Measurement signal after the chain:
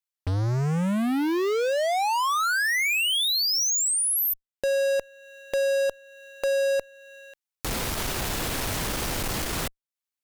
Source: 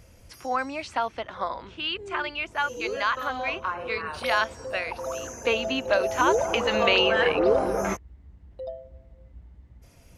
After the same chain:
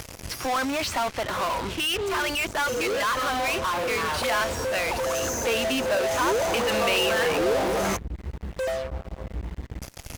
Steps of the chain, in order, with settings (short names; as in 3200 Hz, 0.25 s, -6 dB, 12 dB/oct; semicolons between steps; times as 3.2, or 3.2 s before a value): in parallel at -5 dB: fuzz box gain 48 dB, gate -50 dBFS; on the sum: mismatched tape noise reduction encoder only; gain -8.5 dB